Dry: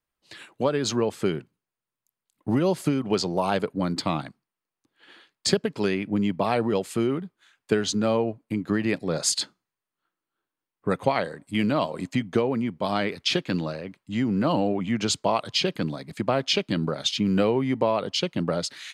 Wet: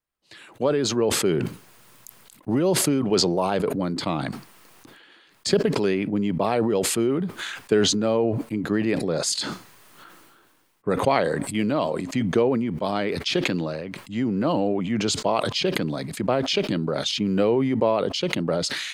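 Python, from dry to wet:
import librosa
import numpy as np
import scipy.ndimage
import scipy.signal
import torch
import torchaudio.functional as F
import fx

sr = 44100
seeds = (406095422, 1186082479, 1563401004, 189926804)

y = fx.dynamic_eq(x, sr, hz=410.0, q=1.0, threshold_db=-34.0, ratio=4.0, max_db=5)
y = fx.sustainer(y, sr, db_per_s=30.0)
y = y * librosa.db_to_amplitude(-2.5)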